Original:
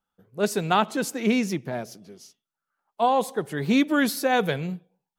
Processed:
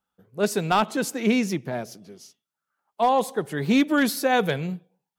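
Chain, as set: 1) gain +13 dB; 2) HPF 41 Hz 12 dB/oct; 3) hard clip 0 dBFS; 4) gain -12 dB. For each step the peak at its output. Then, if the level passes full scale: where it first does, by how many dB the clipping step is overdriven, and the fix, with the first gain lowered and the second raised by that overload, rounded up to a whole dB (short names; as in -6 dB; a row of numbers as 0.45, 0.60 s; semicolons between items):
+4.5, +5.0, 0.0, -12.0 dBFS; step 1, 5.0 dB; step 1 +8 dB, step 4 -7 dB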